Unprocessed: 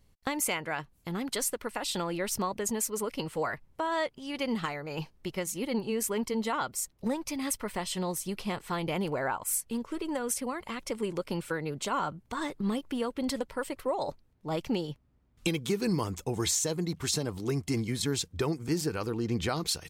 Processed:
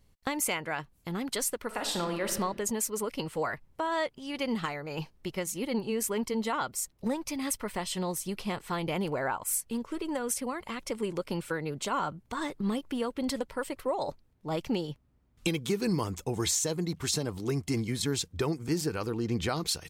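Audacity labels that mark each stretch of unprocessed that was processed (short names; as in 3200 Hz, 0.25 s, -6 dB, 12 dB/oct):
1.660000	2.300000	reverb throw, RT60 0.97 s, DRR 4.5 dB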